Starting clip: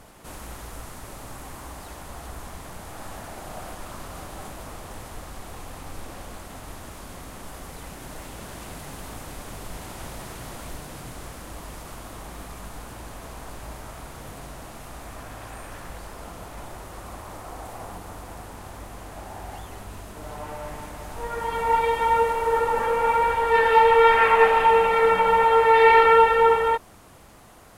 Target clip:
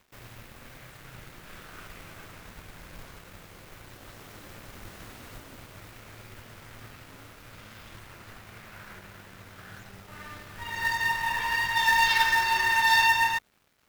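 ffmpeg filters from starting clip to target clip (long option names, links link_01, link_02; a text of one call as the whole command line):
ffmpeg -i in.wav -af "aeval=exprs='sgn(val(0))*max(abs(val(0))-0.00447,0)':channel_layout=same,acrusher=bits=3:mode=log:mix=0:aa=0.000001,asetrate=88200,aresample=44100,volume=-6dB" out.wav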